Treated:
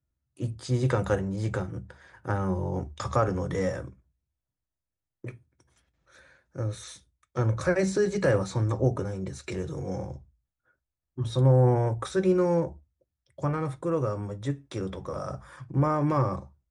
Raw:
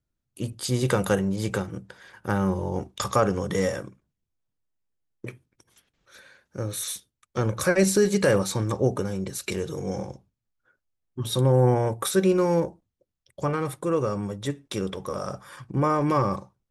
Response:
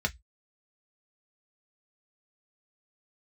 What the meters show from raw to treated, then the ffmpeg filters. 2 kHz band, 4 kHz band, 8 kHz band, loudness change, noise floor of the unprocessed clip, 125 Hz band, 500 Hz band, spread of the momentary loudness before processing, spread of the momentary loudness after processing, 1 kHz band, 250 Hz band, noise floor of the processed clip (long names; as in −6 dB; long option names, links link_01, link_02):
−4.5 dB, −9.5 dB, −12.0 dB, −2.5 dB, −83 dBFS, +0.5 dB, −3.0 dB, 15 LU, 17 LU, −3.5 dB, −3.5 dB, below −85 dBFS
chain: -filter_complex "[0:a]acrossover=split=7600[link_01][link_02];[link_02]acompressor=threshold=-50dB:ratio=4:attack=1:release=60[link_03];[link_01][link_03]amix=inputs=2:normalize=0,asplit=2[link_04][link_05];[1:a]atrim=start_sample=2205,lowshelf=frequency=120:gain=9.5[link_06];[link_05][link_06]afir=irnorm=-1:irlink=0,volume=-11.5dB[link_07];[link_04][link_07]amix=inputs=2:normalize=0,aresample=22050,aresample=44100,volume=-5.5dB"